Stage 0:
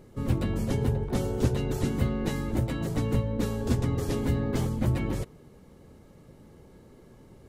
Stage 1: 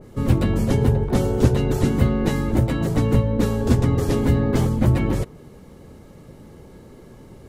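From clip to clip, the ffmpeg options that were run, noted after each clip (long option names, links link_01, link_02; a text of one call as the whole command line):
ffmpeg -i in.wav -af "adynamicequalizer=threshold=0.00282:dfrequency=2100:dqfactor=0.7:tfrequency=2100:tqfactor=0.7:attack=5:release=100:ratio=0.375:range=1.5:mode=cutabove:tftype=highshelf,volume=8.5dB" out.wav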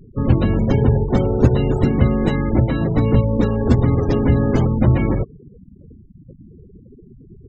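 ffmpeg -i in.wav -af "afftfilt=real='re*gte(hypot(re,im),0.0316)':imag='im*gte(hypot(re,im),0.0316)':win_size=1024:overlap=0.75,volume=3dB" out.wav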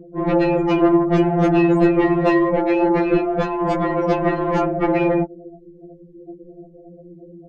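ffmpeg -i in.wav -filter_complex "[0:a]aeval=exprs='val(0)*sin(2*PI*200*n/s)':channel_layout=same,asplit=2[link_01][link_02];[link_02]highpass=frequency=720:poles=1,volume=22dB,asoftclip=type=tanh:threshold=-2dB[link_03];[link_01][link_03]amix=inputs=2:normalize=0,lowpass=frequency=1900:poles=1,volume=-6dB,afftfilt=real='re*2.83*eq(mod(b,8),0)':imag='im*2.83*eq(mod(b,8),0)':win_size=2048:overlap=0.75" out.wav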